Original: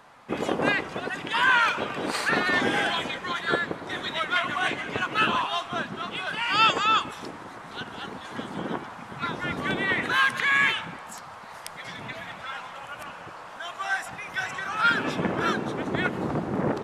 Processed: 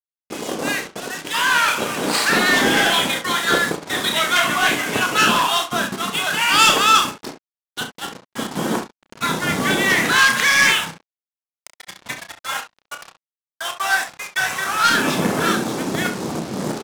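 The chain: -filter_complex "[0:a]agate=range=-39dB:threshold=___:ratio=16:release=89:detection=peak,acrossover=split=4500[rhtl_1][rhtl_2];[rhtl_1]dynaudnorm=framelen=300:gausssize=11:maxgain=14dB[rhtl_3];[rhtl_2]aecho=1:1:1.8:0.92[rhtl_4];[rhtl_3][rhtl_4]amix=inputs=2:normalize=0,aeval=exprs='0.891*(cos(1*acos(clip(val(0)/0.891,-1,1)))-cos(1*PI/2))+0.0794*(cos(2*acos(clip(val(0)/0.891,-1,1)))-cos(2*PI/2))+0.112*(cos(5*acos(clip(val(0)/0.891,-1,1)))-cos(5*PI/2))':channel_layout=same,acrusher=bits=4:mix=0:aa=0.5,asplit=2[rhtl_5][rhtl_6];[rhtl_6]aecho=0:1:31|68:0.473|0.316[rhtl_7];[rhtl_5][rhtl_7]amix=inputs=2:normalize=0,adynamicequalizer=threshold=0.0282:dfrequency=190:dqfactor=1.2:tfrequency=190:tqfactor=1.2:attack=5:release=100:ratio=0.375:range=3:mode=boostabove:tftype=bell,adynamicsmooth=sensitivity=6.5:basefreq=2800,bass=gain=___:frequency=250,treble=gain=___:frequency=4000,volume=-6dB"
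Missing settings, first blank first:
-37dB, -5, 14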